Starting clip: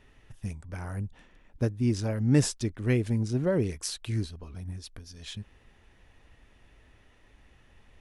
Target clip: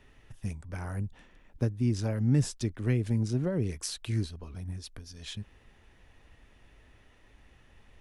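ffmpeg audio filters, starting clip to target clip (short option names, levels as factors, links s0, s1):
-filter_complex "[0:a]acrossover=split=210[s0][s1];[s1]acompressor=threshold=0.0282:ratio=6[s2];[s0][s2]amix=inputs=2:normalize=0"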